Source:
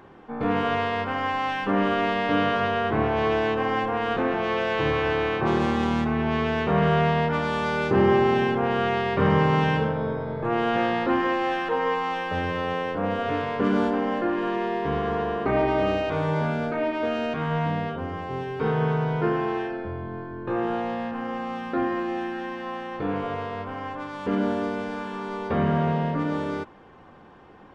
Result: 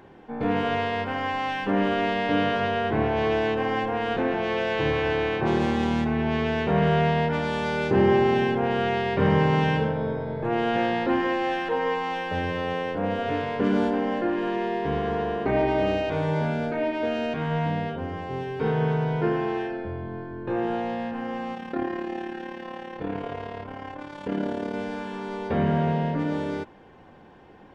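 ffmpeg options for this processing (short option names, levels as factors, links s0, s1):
-filter_complex "[0:a]asplit=3[s0][s1][s2];[s0]afade=t=out:st=21.53:d=0.02[s3];[s1]tremolo=f=36:d=0.667,afade=t=in:st=21.53:d=0.02,afade=t=out:st=24.73:d=0.02[s4];[s2]afade=t=in:st=24.73:d=0.02[s5];[s3][s4][s5]amix=inputs=3:normalize=0,equalizer=f=1200:w=4.3:g=-9"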